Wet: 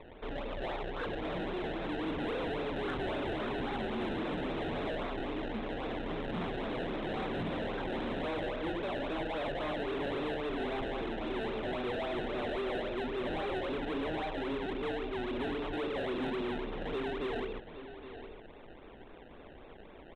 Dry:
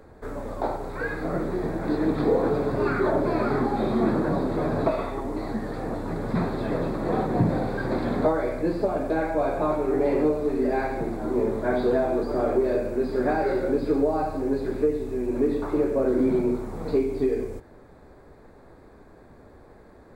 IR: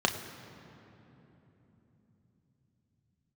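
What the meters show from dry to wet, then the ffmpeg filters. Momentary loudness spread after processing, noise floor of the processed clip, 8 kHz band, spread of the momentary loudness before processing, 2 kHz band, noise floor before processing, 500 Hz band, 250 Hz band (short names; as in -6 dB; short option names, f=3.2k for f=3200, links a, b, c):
12 LU, -52 dBFS, n/a, 7 LU, -4.0 dB, -50 dBFS, -11.5 dB, -11.5 dB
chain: -filter_complex "[0:a]equalizer=f=110:t=o:w=1.7:g=-10,acrossover=split=270|2100[a][b][c];[b]asoftclip=type=hard:threshold=-29.5dB[d];[a][d][c]amix=inputs=3:normalize=0,acrusher=samples=27:mix=1:aa=0.000001:lfo=1:lforange=27:lforate=3.7,aresample=8000,asoftclip=type=tanh:threshold=-32dB,aresample=44100,aecho=1:1:816:0.224,aeval=exprs='0.0398*(cos(1*acos(clip(val(0)/0.0398,-1,1)))-cos(1*PI/2))+0.00282*(cos(3*acos(clip(val(0)/0.0398,-1,1)))-cos(3*PI/2))+0.00178*(cos(5*acos(clip(val(0)/0.0398,-1,1)))-cos(5*PI/2))':c=same"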